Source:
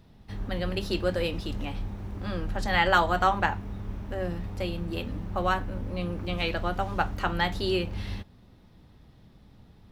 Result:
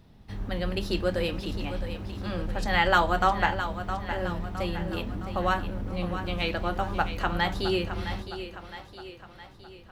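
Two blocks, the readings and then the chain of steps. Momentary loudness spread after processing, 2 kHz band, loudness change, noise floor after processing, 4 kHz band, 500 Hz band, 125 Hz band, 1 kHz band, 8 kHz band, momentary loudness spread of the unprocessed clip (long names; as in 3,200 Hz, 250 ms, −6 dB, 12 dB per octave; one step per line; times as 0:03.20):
18 LU, +0.5 dB, +0.5 dB, −50 dBFS, +0.5 dB, +0.5 dB, 0.0 dB, +0.5 dB, +0.5 dB, 13 LU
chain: echo with a time of its own for lows and highs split 320 Hz, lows 264 ms, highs 663 ms, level −10 dB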